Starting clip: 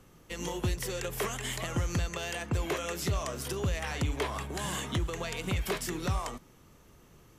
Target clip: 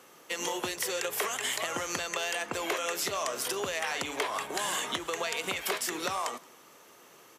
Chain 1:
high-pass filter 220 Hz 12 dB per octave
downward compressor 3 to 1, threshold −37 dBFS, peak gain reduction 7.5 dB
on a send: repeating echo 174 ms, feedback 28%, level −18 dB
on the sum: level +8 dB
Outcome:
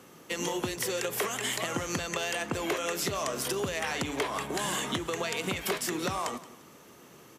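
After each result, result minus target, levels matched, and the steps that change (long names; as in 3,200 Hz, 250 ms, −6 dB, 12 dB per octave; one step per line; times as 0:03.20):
250 Hz band +6.0 dB; echo-to-direct +9 dB
change: high-pass filter 480 Hz 12 dB per octave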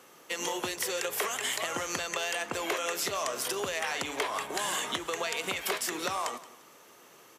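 echo-to-direct +9 dB
change: repeating echo 174 ms, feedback 28%, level −27 dB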